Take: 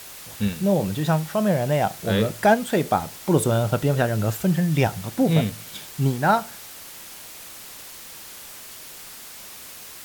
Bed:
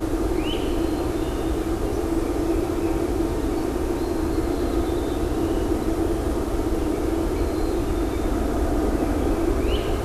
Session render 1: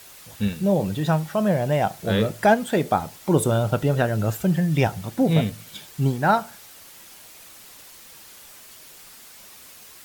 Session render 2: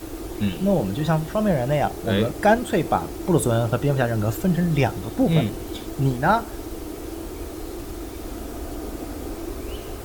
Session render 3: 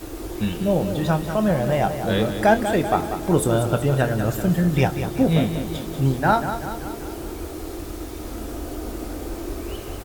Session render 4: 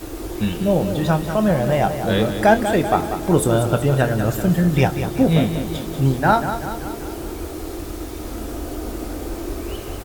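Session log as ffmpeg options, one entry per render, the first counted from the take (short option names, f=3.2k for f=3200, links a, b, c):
-af "afftdn=nr=6:nf=-41"
-filter_complex "[1:a]volume=-10dB[a];[0:a][a]amix=inputs=2:normalize=0"
-filter_complex "[0:a]asplit=2[a][b];[b]adelay=23,volume=-11dB[c];[a][c]amix=inputs=2:normalize=0,aecho=1:1:191|382|573|764|955|1146|1337:0.335|0.188|0.105|0.0588|0.0329|0.0184|0.0103"
-af "volume=2.5dB"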